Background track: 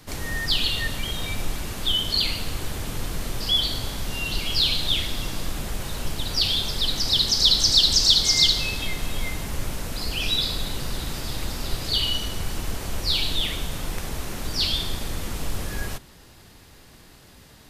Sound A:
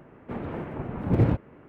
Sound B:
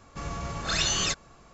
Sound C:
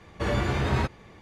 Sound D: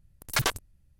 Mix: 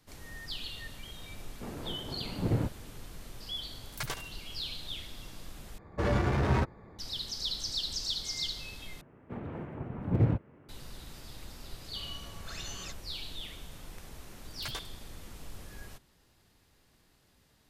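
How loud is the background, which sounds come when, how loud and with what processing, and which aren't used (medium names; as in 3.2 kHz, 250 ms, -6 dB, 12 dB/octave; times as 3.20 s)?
background track -17 dB
1.32 s: add A -8 dB
3.64 s: add D -11.5 dB + feedback delay 71 ms, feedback 39%, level -11 dB
5.78 s: replace with C -1.5 dB + local Wiener filter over 15 samples
9.01 s: replace with A -8 dB + peaking EQ 110 Hz +4.5 dB 1.6 oct
11.79 s: add B -16.5 dB
14.29 s: add D -15.5 dB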